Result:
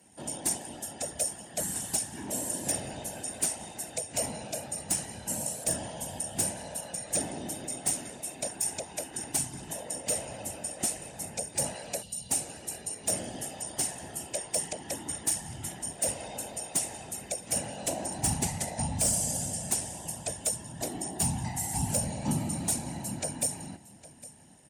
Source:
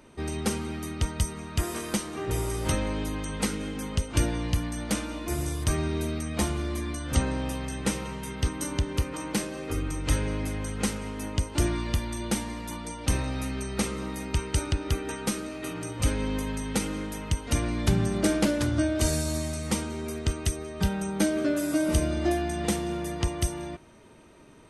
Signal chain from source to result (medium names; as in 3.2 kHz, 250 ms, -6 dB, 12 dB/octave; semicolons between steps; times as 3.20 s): split-band scrambler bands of 500 Hz; ten-band graphic EQ 125 Hz +10 dB, 250 Hz +12 dB, 500 Hz -7 dB, 1 kHz -10 dB, 4 kHz -6 dB, 8 kHz +11 dB; whisper effect; high-pass 77 Hz 12 dB/octave; treble shelf 3.4 kHz +7 dB; delay 808 ms -18 dB; time-frequency box 12.02–12.30 s, 240–2700 Hz -14 dB; hard clipper -13.5 dBFS, distortion -17 dB; trim -7 dB